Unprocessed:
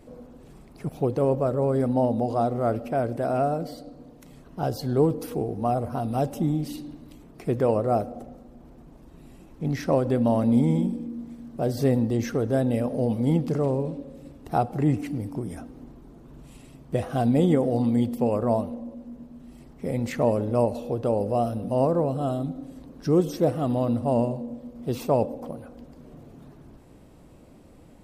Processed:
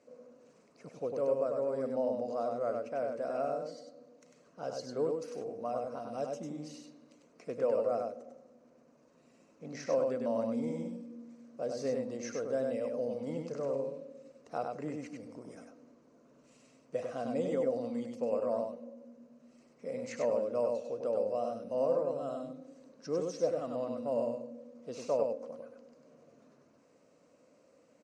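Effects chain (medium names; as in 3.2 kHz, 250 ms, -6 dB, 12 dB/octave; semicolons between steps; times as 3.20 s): cabinet simulation 350–7300 Hz, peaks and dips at 360 Hz -10 dB, 520 Hz +6 dB, 820 Hz -10 dB, 1.8 kHz -3 dB, 3.4 kHz -10 dB, 6.3 kHz +6 dB; delay 98 ms -4 dB; trim -8.5 dB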